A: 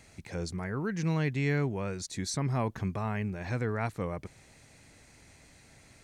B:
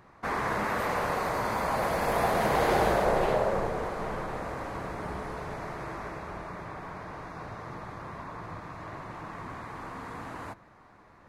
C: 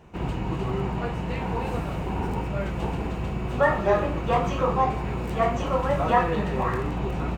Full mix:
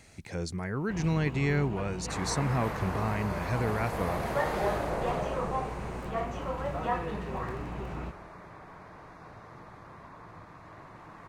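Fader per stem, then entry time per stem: +1.0, −8.0, −10.0 decibels; 0.00, 1.85, 0.75 seconds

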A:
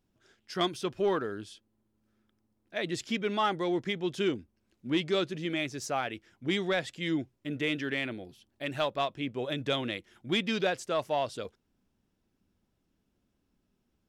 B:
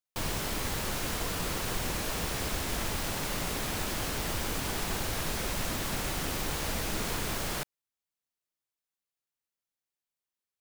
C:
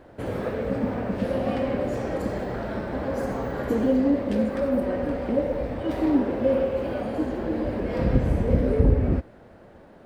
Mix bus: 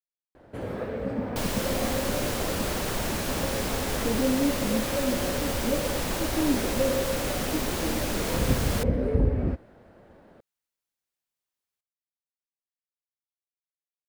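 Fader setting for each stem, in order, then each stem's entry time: muted, +2.0 dB, −4.0 dB; muted, 1.20 s, 0.35 s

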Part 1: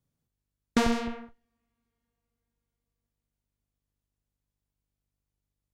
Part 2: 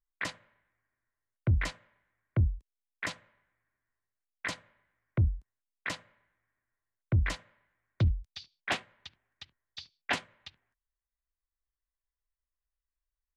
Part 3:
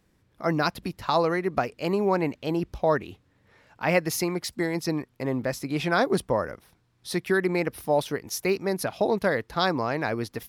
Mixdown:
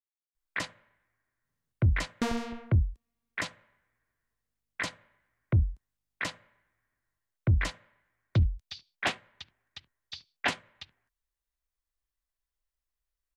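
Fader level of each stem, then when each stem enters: −6.0 dB, +2.0 dB, muted; 1.45 s, 0.35 s, muted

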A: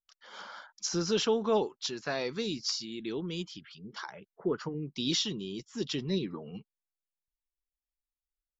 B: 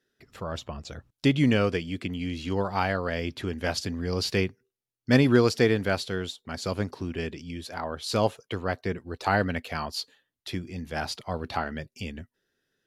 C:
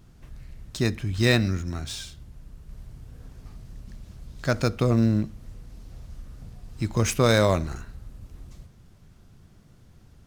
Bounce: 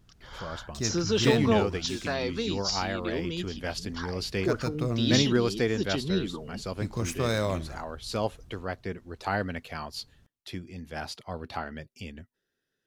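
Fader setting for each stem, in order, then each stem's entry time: +2.5, −5.0, −8.0 decibels; 0.00, 0.00, 0.00 seconds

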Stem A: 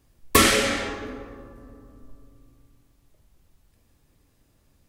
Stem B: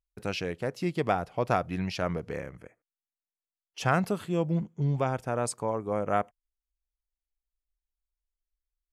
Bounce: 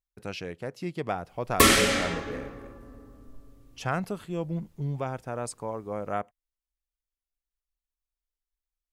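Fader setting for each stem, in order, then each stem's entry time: −1.5, −4.0 decibels; 1.25, 0.00 seconds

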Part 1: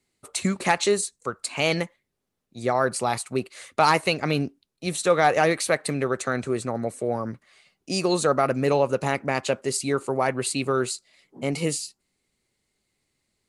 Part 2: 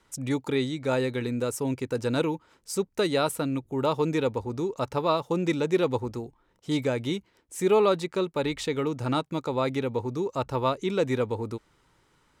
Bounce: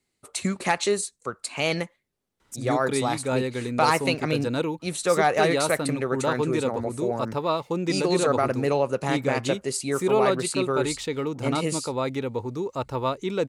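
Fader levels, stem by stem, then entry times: −2.0, −0.5 decibels; 0.00, 2.40 seconds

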